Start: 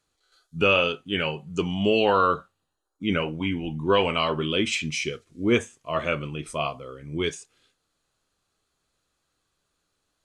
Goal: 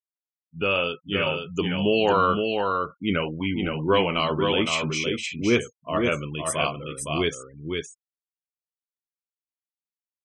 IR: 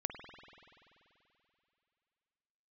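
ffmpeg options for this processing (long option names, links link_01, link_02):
-filter_complex "[0:a]asplit=3[link_01][link_02][link_03];[link_01]afade=type=out:start_time=6.33:duration=0.02[link_04];[link_02]aemphasis=mode=production:type=75fm,afade=type=in:start_time=6.33:duration=0.02,afade=type=out:start_time=7.14:duration=0.02[link_05];[link_03]afade=type=in:start_time=7.14:duration=0.02[link_06];[link_04][link_05][link_06]amix=inputs=3:normalize=0,afftfilt=real='re*gte(hypot(re,im),0.0112)':imag='im*gte(hypot(re,im),0.0112)':win_size=1024:overlap=0.75,dynaudnorm=framelen=170:gausssize=9:maxgain=11dB,aecho=1:1:514:0.596,volume=-7.5dB"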